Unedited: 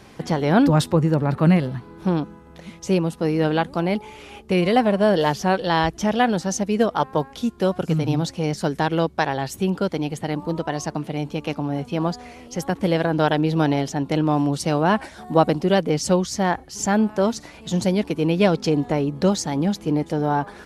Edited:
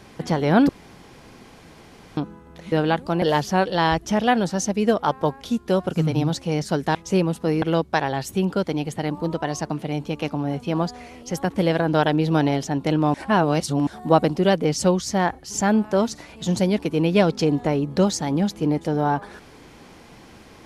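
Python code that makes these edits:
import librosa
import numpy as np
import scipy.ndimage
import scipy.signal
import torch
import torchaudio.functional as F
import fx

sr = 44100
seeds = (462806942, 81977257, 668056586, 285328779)

y = fx.edit(x, sr, fx.room_tone_fill(start_s=0.69, length_s=1.48),
    fx.move(start_s=2.72, length_s=0.67, to_s=8.87),
    fx.cut(start_s=3.89, length_s=1.25),
    fx.reverse_span(start_s=14.39, length_s=0.73), tone=tone)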